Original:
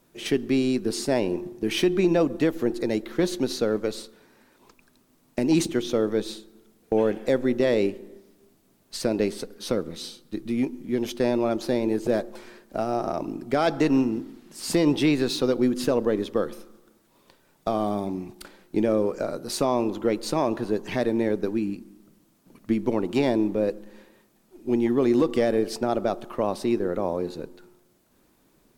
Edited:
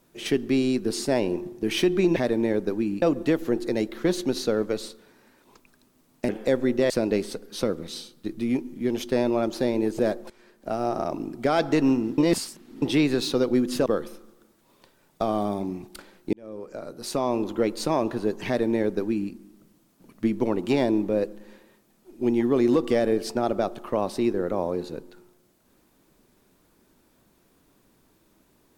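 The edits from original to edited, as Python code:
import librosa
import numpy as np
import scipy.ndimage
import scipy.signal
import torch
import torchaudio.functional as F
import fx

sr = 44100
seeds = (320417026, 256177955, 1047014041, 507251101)

y = fx.edit(x, sr, fx.cut(start_s=5.43, length_s=1.67),
    fx.cut(start_s=7.71, length_s=1.27),
    fx.fade_in_from(start_s=12.38, length_s=0.52, floor_db=-16.5),
    fx.reverse_span(start_s=14.26, length_s=0.64),
    fx.cut(start_s=15.94, length_s=0.38),
    fx.fade_in_span(start_s=18.79, length_s=1.16),
    fx.duplicate(start_s=20.92, length_s=0.86, to_s=2.16), tone=tone)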